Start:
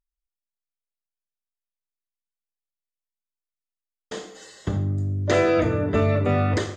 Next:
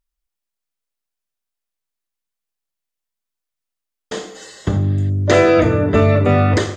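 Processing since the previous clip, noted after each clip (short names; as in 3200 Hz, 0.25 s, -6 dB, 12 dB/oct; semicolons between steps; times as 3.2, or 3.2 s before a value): spectral repair 4.85–5.07, 1500–4900 Hz before; gain +7.5 dB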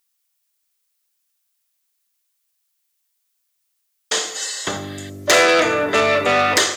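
overdrive pedal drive 17 dB, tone 6100 Hz, clips at -1 dBFS; RIAA curve recording; gain -4.5 dB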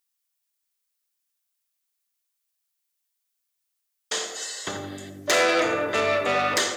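tape echo 86 ms, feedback 63%, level -5.5 dB, low-pass 1300 Hz; gain -7.5 dB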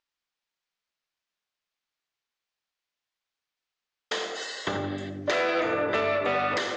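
compressor 6:1, threshold -27 dBFS, peak gain reduction 9.5 dB; air absorption 190 m; gain +5 dB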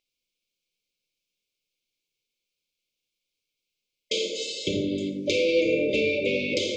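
brick-wall FIR band-stop 610–2100 Hz; on a send at -7 dB: reverb RT60 0.55 s, pre-delay 3 ms; on the sum: gain +4.5 dB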